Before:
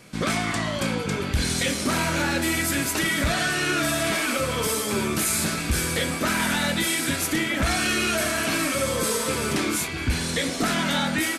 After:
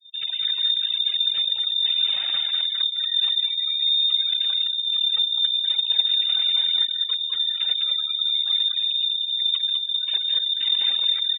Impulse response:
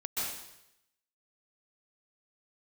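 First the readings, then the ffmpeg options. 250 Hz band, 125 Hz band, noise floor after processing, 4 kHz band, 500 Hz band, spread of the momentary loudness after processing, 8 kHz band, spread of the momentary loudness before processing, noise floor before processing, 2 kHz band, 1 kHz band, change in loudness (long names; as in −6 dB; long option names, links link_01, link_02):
below −40 dB, below −40 dB, −29 dBFS, +12.0 dB, below −25 dB, 3 LU, below −40 dB, 3 LU, −30 dBFS, −16.5 dB, below −20 dB, +4.0 dB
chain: -filter_complex "[0:a]acrossover=split=220[link_01][link_02];[link_02]acompressor=threshold=-41dB:ratio=5[link_03];[link_01][link_03]amix=inputs=2:normalize=0,aphaser=in_gain=1:out_gain=1:delay=4.2:decay=0.25:speed=0.47:type=sinusoidal,aresample=16000,aeval=exprs='(mod(20*val(0)+1,2)-1)/20':channel_layout=same,aresample=44100,bandreject=frequency=600:width=12,aeval=exprs='sgn(val(0))*max(abs(val(0))-0.00473,0)':channel_layout=same,lowshelf=frequency=290:width_type=q:width=3:gain=12.5,asplit=2[link_04][link_05];[link_05]aecho=0:1:203|406|609|812:0.708|0.191|0.0516|0.0139[link_06];[link_04][link_06]amix=inputs=2:normalize=0,afftfilt=real='re*gte(hypot(re,im),0.0355)':imag='im*gte(hypot(re,im),0.0355)':win_size=1024:overlap=0.75,highpass=frequency=120:width=0.5412,highpass=frequency=120:width=1.3066,equalizer=frequency=370:width_type=o:width=0.77:gain=-8,lowpass=frequency=3200:width_type=q:width=0.5098,lowpass=frequency=3200:width_type=q:width=0.6013,lowpass=frequency=3200:width_type=q:width=0.9,lowpass=frequency=3200:width_type=q:width=2.563,afreqshift=-3800"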